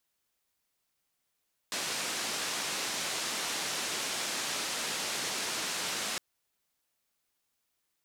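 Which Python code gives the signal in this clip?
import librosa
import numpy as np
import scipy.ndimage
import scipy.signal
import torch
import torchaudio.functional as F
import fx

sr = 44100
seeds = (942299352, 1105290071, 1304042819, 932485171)

y = fx.band_noise(sr, seeds[0], length_s=4.46, low_hz=180.0, high_hz=7100.0, level_db=-34.5)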